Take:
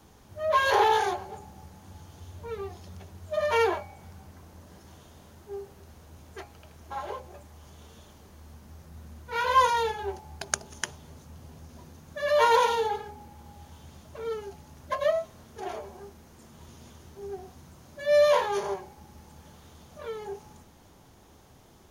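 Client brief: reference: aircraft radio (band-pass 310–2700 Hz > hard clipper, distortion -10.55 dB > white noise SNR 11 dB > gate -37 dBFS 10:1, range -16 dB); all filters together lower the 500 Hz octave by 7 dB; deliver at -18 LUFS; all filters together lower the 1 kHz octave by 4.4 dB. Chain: band-pass 310–2700 Hz; peaking EQ 500 Hz -7 dB; peaking EQ 1 kHz -3 dB; hard clipper -26 dBFS; white noise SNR 11 dB; gate -37 dBFS 10:1, range -16 dB; trim +16 dB

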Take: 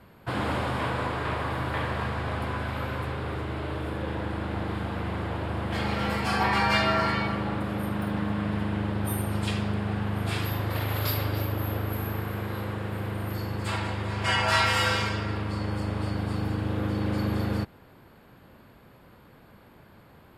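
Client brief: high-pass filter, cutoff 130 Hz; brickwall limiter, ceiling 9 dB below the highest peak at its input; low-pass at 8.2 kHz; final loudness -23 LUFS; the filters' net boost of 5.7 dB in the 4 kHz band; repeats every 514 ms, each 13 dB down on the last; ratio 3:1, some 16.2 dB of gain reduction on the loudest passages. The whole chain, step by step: high-pass 130 Hz; low-pass 8.2 kHz; peaking EQ 4 kHz +8 dB; compression 3:1, threshold -40 dBFS; peak limiter -32.5 dBFS; feedback delay 514 ms, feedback 22%, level -13 dB; trim +18 dB

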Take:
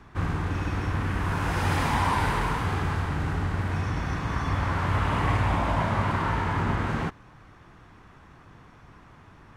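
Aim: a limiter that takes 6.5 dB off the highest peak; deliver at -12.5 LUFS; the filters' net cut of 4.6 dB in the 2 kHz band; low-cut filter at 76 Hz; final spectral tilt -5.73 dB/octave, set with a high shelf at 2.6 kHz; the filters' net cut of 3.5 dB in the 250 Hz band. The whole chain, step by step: high-pass 76 Hz; peaking EQ 250 Hz -5 dB; peaking EQ 2 kHz -4.5 dB; treble shelf 2.6 kHz -3.5 dB; trim +18.5 dB; peak limiter -2 dBFS

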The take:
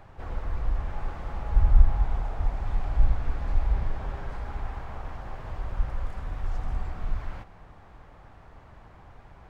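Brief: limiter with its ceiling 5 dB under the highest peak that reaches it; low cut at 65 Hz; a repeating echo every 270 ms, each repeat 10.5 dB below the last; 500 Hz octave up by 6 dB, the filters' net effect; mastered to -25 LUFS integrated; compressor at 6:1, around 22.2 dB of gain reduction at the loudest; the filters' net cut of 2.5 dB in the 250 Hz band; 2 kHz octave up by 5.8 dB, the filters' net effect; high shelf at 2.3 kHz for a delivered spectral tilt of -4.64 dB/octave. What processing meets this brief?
high-pass 65 Hz; peaking EQ 250 Hz -6.5 dB; peaking EQ 500 Hz +8.5 dB; peaking EQ 2 kHz +5 dB; treble shelf 2.3 kHz +4 dB; compression 6:1, threshold -43 dBFS; peak limiter -38.5 dBFS; feedback delay 270 ms, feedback 30%, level -10.5 dB; trim +23.5 dB

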